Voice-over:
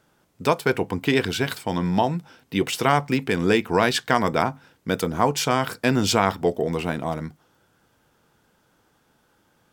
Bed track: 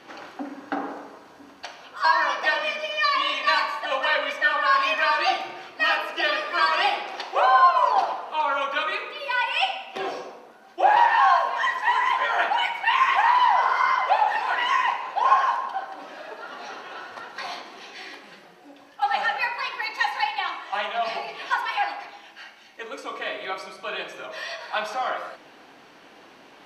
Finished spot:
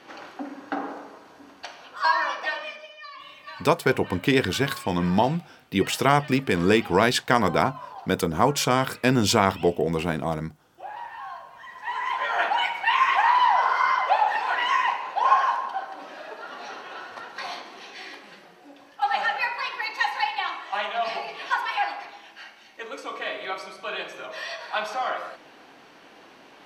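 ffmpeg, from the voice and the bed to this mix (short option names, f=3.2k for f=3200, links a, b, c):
-filter_complex "[0:a]adelay=3200,volume=0dB[a];[1:a]volume=18.5dB,afade=t=out:st=2.02:d=0.97:silence=0.112202,afade=t=in:st=11.67:d=0.8:silence=0.105925[b];[a][b]amix=inputs=2:normalize=0"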